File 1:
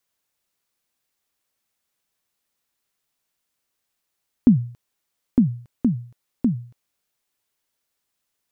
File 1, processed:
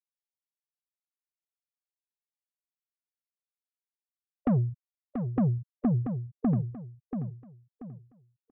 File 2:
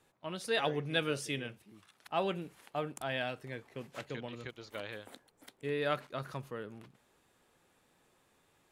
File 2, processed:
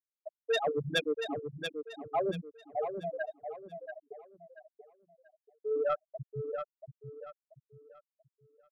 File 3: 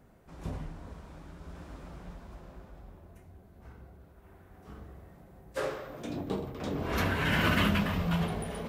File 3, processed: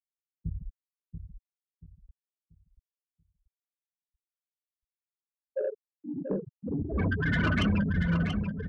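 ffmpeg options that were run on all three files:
-filter_complex "[0:a]afftfilt=real='re*gte(hypot(re,im),0.112)':imag='im*gte(hypot(re,im),0.112)':win_size=1024:overlap=0.75,aemphasis=mode=production:type=75kf,asplit=2[a][b];[b]alimiter=limit=-17dB:level=0:latency=1:release=331,volume=0dB[c];[a][c]amix=inputs=2:normalize=0,acrossover=split=180|3000[d][e][f];[e]acompressor=threshold=-23dB:ratio=4[g];[d][g][f]amix=inputs=3:normalize=0,asoftclip=type=tanh:threshold=-21dB,asplit=2[h][i];[i]aecho=0:1:684|1368|2052|2736:0.422|0.135|0.0432|0.0138[j];[h][j]amix=inputs=2:normalize=0"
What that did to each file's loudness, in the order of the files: -7.0, +2.0, +1.0 LU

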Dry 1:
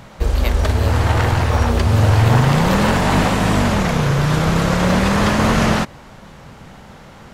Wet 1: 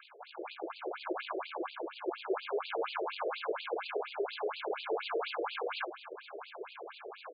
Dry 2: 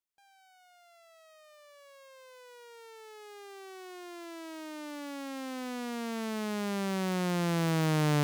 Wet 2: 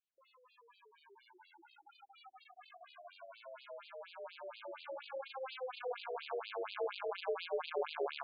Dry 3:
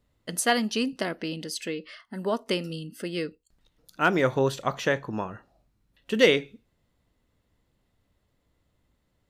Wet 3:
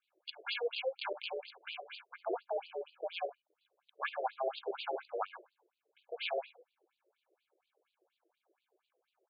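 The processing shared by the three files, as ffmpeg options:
-af "aeval=exprs='if(lt(val(0),0),0.447*val(0),val(0))':c=same,areverse,acompressor=threshold=-31dB:ratio=4,areverse,aeval=exprs='val(0)*sin(2*PI*260*n/s)':c=same,asuperstop=centerf=1900:order=8:qfactor=5.7,aecho=1:1:50|70:0.237|0.15,afftfilt=real='re*between(b*sr/1024,460*pow(3500/460,0.5+0.5*sin(2*PI*4.2*pts/sr))/1.41,460*pow(3500/460,0.5+0.5*sin(2*PI*4.2*pts/sr))*1.41)':imag='im*between(b*sr/1024,460*pow(3500/460,0.5+0.5*sin(2*PI*4.2*pts/sr))/1.41,460*pow(3500/460,0.5+0.5*sin(2*PI*4.2*pts/sr))*1.41)':win_size=1024:overlap=0.75,volume=7dB"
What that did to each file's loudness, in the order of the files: -22.0, -9.5, -13.0 LU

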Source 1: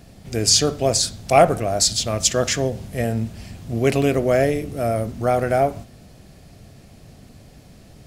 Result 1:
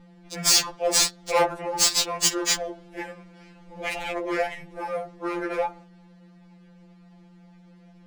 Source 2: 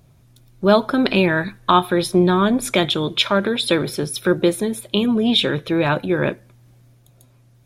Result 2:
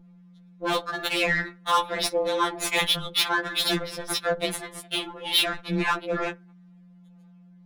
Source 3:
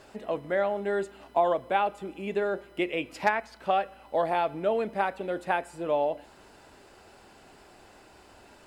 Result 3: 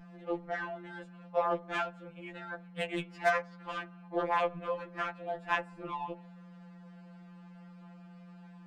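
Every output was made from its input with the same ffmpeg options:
-af "aderivative,aeval=exprs='val(0)*sin(2*PI*150*n/s)':c=same,adynamicsmooth=sensitivity=5.5:basefreq=1.5k,highshelf=f=2.8k:g=-8.5,aeval=exprs='val(0)+0.000562*(sin(2*PI*60*n/s)+sin(2*PI*2*60*n/s)/2+sin(2*PI*3*60*n/s)/3+sin(2*PI*4*60*n/s)/4+sin(2*PI*5*60*n/s)/5)':c=same,volume=20dB,asoftclip=hard,volume=-20dB,apsyclip=24.5dB,asoftclip=type=tanh:threshold=-6.5dB,afftfilt=real='re*2.83*eq(mod(b,8),0)':imag='im*2.83*eq(mod(b,8),0)':win_size=2048:overlap=0.75,volume=-4dB"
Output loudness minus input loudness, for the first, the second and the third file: -4.0, -7.0, -6.5 LU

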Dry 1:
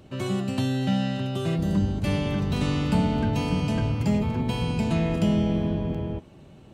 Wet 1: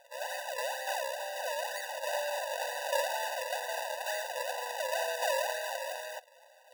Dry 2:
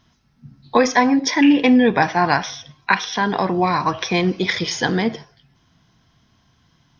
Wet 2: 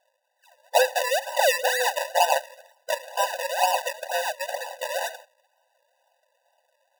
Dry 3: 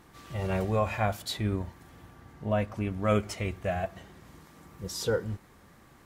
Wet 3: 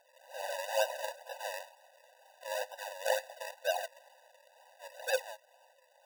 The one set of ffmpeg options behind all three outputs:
-filter_complex "[0:a]acrossover=split=3900[a][b];[b]acompressor=threshold=-46dB:ratio=4:attack=1:release=60[c];[a][c]amix=inputs=2:normalize=0,acrusher=samples=40:mix=1:aa=0.000001:lfo=1:lforange=40:lforate=2.1,afftfilt=real='re*eq(mod(floor(b*sr/1024/500),2),1)':imag='im*eq(mod(floor(b*sr/1024/500),2),1)':win_size=1024:overlap=0.75"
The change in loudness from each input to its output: -9.0, -7.0, -5.5 LU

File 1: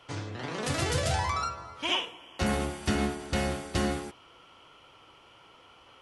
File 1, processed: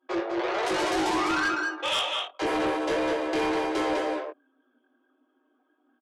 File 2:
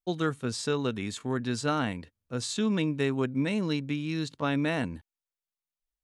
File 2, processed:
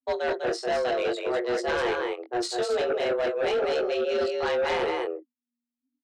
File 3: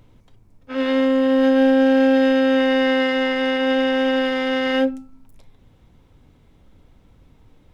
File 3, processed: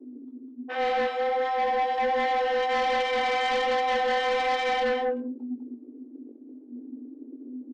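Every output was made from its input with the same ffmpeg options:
-filter_complex "[0:a]aemphasis=mode=reproduction:type=75kf,anlmdn=0.158,highshelf=f=3.7k:g=5,areverse,acompressor=threshold=-29dB:ratio=10,areverse,afreqshift=240,flanger=delay=19:depth=3.8:speed=1.3,aecho=1:1:43|201:0.119|0.562,asplit=2[a][b];[b]aeval=exprs='0.075*sin(PI/2*2.82*val(0)/0.075)':c=same,volume=-3dB[c];[a][c]amix=inputs=2:normalize=0"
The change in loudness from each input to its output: +4.0, +3.0, -8.0 LU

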